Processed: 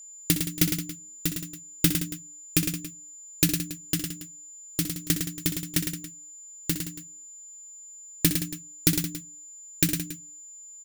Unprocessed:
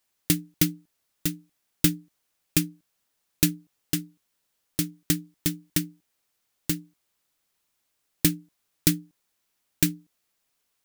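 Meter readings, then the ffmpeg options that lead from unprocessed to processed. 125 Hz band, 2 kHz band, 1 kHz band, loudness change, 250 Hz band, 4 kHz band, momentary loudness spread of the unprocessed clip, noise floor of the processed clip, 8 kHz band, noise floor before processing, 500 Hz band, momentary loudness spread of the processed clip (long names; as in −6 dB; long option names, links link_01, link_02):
+0.5 dB, +1.5 dB, +1.5 dB, 0.0 dB, −1.0 dB, +1.5 dB, 12 LU, −46 dBFS, +2.5 dB, −76 dBFS, +1.0 dB, 18 LU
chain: -af "bandreject=frequency=50:width_type=h:width=6,bandreject=frequency=100:width_type=h:width=6,bandreject=frequency=150:width_type=h:width=6,bandreject=frequency=200:width_type=h:width=6,bandreject=frequency=250:width_type=h:width=6,bandreject=frequency=300:width_type=h:width=6,aecho=1:1:62|107|171|279:0.282|0.473|0.224|0.141,aeval=exprs='val(0)+0.00708*sin(2*PI*7100*n/s)':channel_layout=same"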